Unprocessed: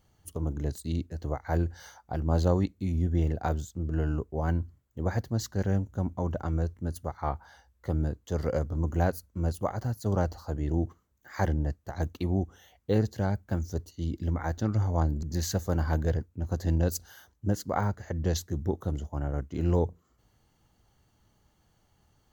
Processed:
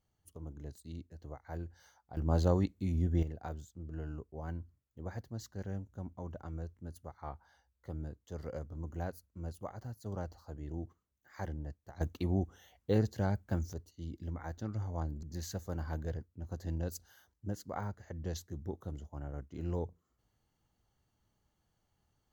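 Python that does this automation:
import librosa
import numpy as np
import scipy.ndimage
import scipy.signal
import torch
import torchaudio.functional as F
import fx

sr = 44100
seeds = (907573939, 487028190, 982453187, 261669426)

y = fx.gain(x, sr, db=fx.steps((0.0, -14.5), (2.17, -4.0), (3.23, -13.0), (12.01, -4.0), (13.73, -11.0)))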